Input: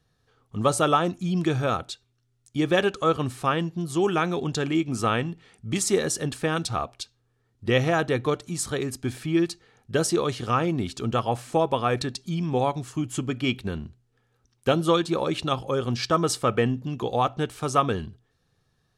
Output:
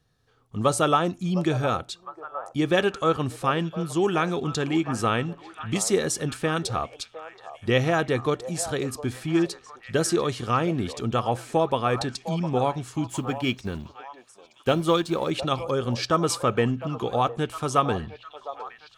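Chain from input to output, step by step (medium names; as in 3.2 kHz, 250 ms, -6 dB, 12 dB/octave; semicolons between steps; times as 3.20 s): 13.10–15.31 s: companding laws mixed up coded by A; repeats whose band climbs or falls 708 ms, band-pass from 700 Hz, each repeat 0.7 oct, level -9.5 dB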